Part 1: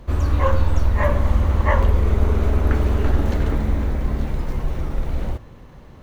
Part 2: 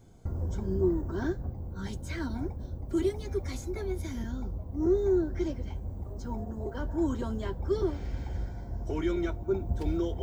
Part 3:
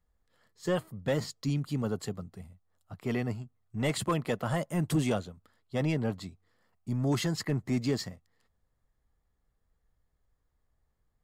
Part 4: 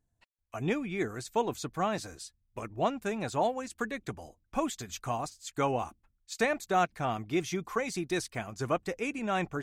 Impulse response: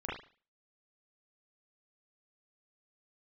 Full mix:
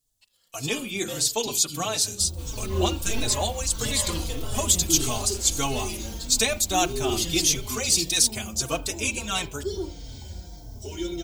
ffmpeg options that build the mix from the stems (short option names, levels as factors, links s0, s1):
-filter_complex "[0:a]adelay=2300,volume=0.141,asplit=2[s0][s1];[s1]volume=0.398[s2];[1:a]bandreject=f=1200:w=5.9,adynamicequalizer=threshold=0.00282:dfrequency=1800:dqfactor=0.7:tfrequency=1800:tqfactor=0.7:attack=5:release=100:ratio=0.375:range=3:mode=cutabove:tftype=highshelf,adelay=1950,volume=0.708,asplit=2[s3][s4];[s4]volume=0.316[s5];[2:a]volume=0.335,asplit=2[s6][s7];[s7]volume=0.631[s8];[3:a]bandreject=f=60:t=h:w=6,bandreject=f=120:t=h:w=6,bandreject=f=180:t=h:w=6,bandreject=f=240:t=h:w=6,bandreject=f=300:t=h:w=6,bandreject=f=360:t=h:w=6,bandreject=f=420:t=h:w=6,agate=range=0.398:threshold=0.00224:ratio=16:detection=peak,volume=1.33,asplit=2[s9][s10];[s10]volume=0.106[s11];[4:a]atrim=start_sample=2205[s12];[s2][s5][s8][s11]amix=inputs=4:normalize=0[s13];[s13][s12]afir=irnorm=-1:irlink=0[s14];[s0][s3][s6][s9][s14]amix=inputs=5:normalize=0,aexciter=amount=9.8:drive=4.2:freq=2800,asplit=2[s15][s16];[s16]adelay=4,afreqshift=-1.6[s17];[s15][s17]amix=inputs=2:normalize=1"